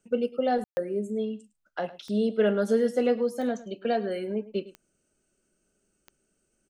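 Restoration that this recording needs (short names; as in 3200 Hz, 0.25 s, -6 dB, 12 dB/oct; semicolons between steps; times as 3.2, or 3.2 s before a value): de-click; room tone fill 0.64–0.77; inverse comb 0.106 s -17.5 dB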